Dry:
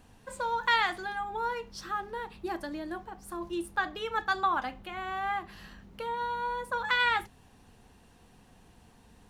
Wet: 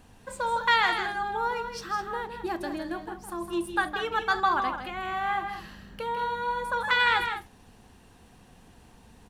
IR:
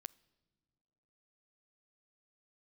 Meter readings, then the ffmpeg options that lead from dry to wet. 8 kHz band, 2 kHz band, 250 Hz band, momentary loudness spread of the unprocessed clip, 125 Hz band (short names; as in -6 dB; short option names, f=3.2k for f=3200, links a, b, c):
+4.0 dB, +4.0 dB, +4.0 dB, 14 LU, +4.0 dB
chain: -af "aecho=1:1:160.3|207:0.398|0.251,volume=3dB"